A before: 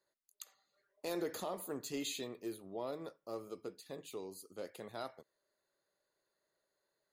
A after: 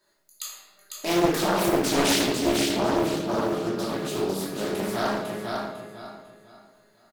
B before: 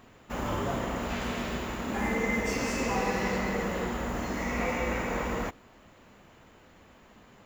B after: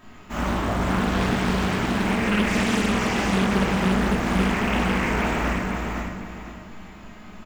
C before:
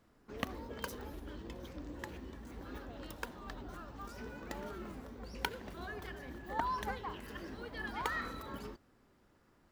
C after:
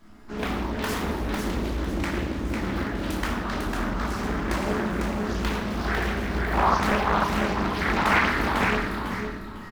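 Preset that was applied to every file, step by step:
peaking EQ 510 Hz -8 dB 0.38 oct; peak limiter -25.5 dBFS; feedback comb 210 Hz, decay 0.38 s, harmonics all, mix 70%; on a send: feedback delay 500 ms, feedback 30%, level -4 dB; on the sum: simulated room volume 440 m³, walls mixed, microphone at 2.8 m; loudspeaker Doppler distortion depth 0.81 ms; peak normalisation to -9 dBFS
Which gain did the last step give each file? +20.0 dB, +10.5 dB, +18.0 dB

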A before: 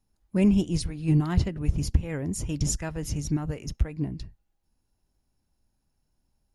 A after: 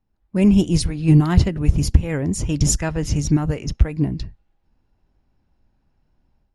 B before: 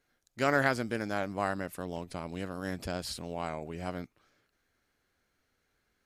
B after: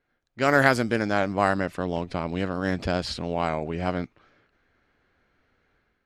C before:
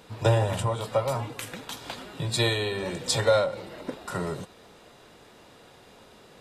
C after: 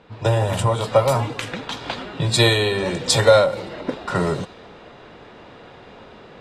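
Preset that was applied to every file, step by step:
level-controlled noise filter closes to 2.7 kHz, open at -22.5 dBFS; level rider gain up to 8.5 dB; trim +1.5 dB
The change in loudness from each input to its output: +8.0 LU, +8.5 LU, +8.0 LU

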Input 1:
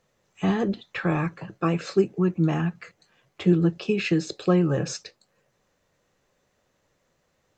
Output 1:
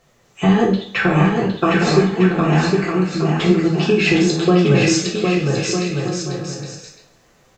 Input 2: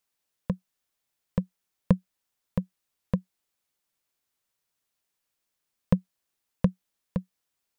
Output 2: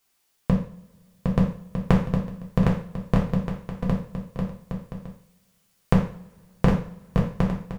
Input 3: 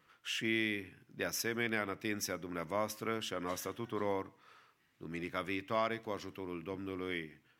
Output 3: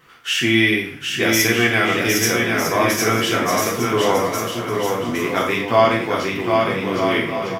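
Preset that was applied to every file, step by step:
compression, threshold -24 dBFS; on a send: bouncing-ball echo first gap 760 ms, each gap 0.65×, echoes 5; on the sum: two-slope reverb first 0.45 s, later 2.1 s, from -27 dB, DRR -2 dB; peak normalisation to -2 dBFS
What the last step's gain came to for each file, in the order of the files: +9.5 dB, +8.0 dB, +14.0 dB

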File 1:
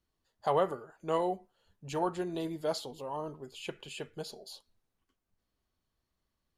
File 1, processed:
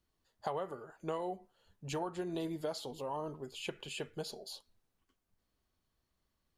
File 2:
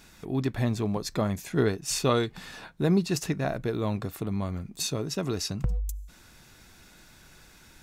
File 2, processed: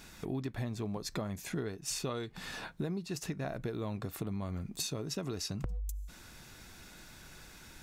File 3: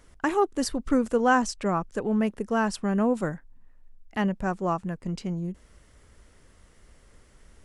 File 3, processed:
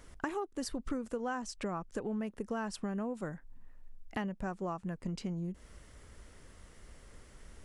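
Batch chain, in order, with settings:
compression 8:1, threshold -35 dBFS; trim +1 dB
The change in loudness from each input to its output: -5.5 LU, -9.5 LU, -12.0 LU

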